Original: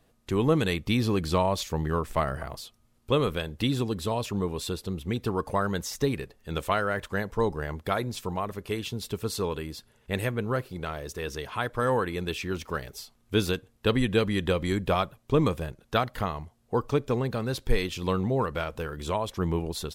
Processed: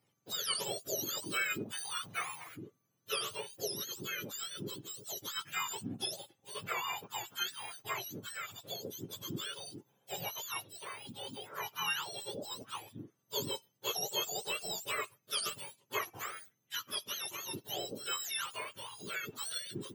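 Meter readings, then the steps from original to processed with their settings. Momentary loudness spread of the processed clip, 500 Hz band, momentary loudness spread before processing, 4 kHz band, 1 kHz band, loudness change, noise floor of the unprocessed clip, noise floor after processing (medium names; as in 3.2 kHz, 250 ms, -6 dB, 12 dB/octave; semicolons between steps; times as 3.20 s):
10 LU, -17.0 dB, 9 LU, -1.0 dB, -11.0 dB, -9.5 dB, -65 dBFS, -78 dBFS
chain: spectrum inverted on a logarithmic axis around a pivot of 1.2 kHz; peaking EQ 120 Hz -9.5 dB 2.6 oct; trim -6.5 dB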